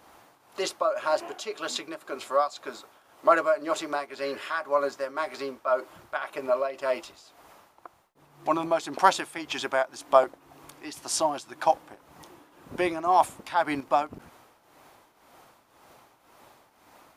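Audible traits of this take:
tremolo triangle 1.9 Hz, depth 75%

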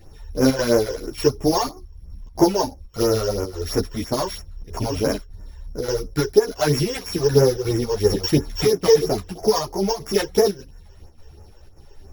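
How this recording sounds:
a buzz of ramps at a fixed pitch in blocks of 8 samples
phaser sweep stages 12, 3 Hz, lowest notch 210–4,000 Hz
chopped level 1.7 Hz, depth 60%, duty 85%
a shimmering, thickened sound

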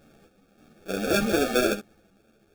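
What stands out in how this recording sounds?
sample-and-hold tremolo
aliases and images of a low sample rate 1,000 Hz, jitter 0%
a shimmering, thickened sound

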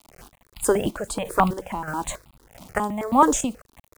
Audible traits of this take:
a quantiser's noise floor 8 bits, dither none
chopped level 1.6 Hz, depth 60%, duty 45%
notches that jump at a steady rate 9.3 Hz 450–1,700 Hz

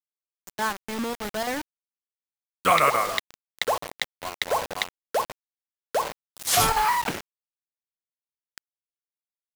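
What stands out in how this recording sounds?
chopped level 3.4 Hz, depth 60%, duty 85%
a quantiser's noise floor 6 bits, dither none

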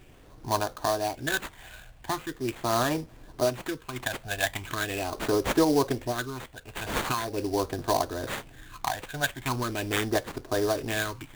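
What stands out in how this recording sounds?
phaser sweep stages 12, 0.41 Hz, lowest notch 350–3,300 Hz
aliases and images of a low sample rate 5,300 Hz, jitter 20%

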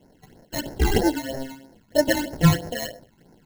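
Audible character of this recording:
aliases and images of a low sample rate 1,200 Hz, jitter 0%
phaser sweep stages 12, 3.1 Hz, lowest notch 510–3,300 Hz

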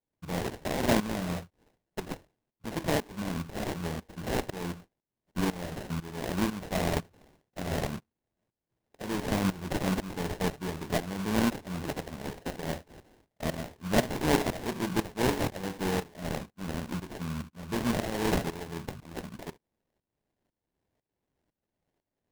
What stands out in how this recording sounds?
a buzz of ramps at a fixed pitch in blocks of 16 samples
tremolo saw up 2 Hz, depth 85%
aliases and images of a low sample rate 1,300 Hz, jitter 20%

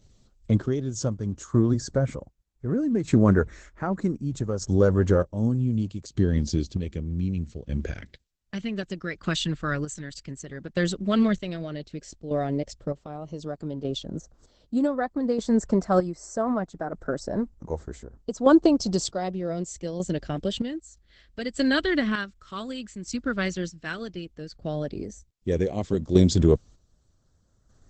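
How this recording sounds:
phaser sweep stages 2, 0.077 Hz, lowest notch 770–2,800 Hz
chopped level 0.65 Hz, depth 60%, duty 40%
Opus

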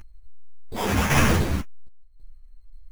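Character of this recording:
phaser sweep stages 2, 1.6 Hz, lowest notch 500–1,600 Hz
chopped level 0.91 Hz, depth 60%, duty 70%
aliases and images of a low sample rate 4,200 Hz, jitter 0%
a shimmering, thickened sound

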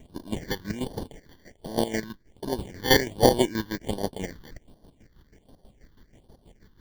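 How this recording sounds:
chopped level 6.2 Hz, depth 65%, duty 40%
aliases and images of a low sample rate 1,300 Hz, jitter 0%
phaser sweep stages 6, 1.3 Hz, lowest notch 630–2,300 Hz

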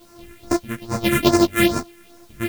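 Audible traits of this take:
a buzz of ramps at a fixed pitch in blocks of 128 samples
phaser sweep stages 4, 2.4 Hz, lowest notch 760–3,100 Hz
a quantiser's noise floor 10 bits, dither triangular
a shimmering, thickened sound

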